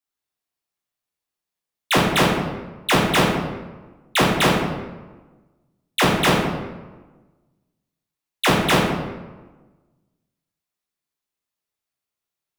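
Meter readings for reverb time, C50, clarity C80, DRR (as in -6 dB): 1.3 s, 1.0 dB, 4.0 dB, -5.0 dB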